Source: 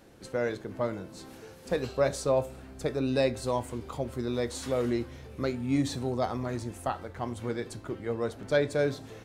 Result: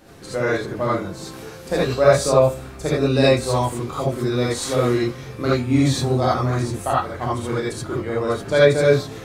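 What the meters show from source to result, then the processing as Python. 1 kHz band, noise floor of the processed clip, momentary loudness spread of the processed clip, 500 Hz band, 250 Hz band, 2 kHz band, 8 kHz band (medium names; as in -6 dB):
+12.5 dB, -37 dBFS, 11 LU, +11.0 dB, +9.5 dB, +12.0 dB, +12.0 dB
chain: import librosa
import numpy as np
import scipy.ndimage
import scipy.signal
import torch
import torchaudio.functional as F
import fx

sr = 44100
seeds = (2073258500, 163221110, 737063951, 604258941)

y = fx.rev_gated(x, sr, seeds[0], gate_ms=100, shape='rising', drr_db=-6.5)
y = F.gain(torch.from_numpy(y), 5.0).numpy()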